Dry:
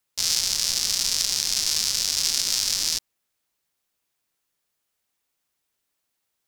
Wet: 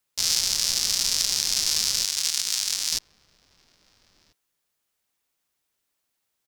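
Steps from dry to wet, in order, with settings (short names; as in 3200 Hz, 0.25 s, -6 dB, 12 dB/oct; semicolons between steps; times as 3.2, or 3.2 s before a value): outdoor echo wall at 230 m, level -22 dB; 2.05–2.92 power-law curve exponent 1.4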